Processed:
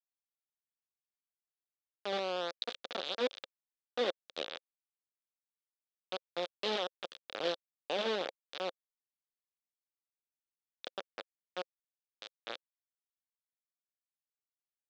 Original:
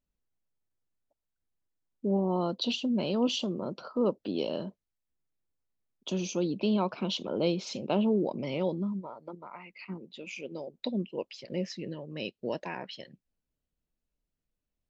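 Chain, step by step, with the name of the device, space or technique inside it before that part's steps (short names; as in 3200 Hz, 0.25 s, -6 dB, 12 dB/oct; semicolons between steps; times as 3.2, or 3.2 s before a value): hand-held game console (bit-crush 4-bit; speaker cabinet 410–4700 Hz, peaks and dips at 530 Hz +7 dB, 980 Hz -7 dB, 2000 Hz -4 dB, 3600 Hz +8 dB); gain -7.5 dB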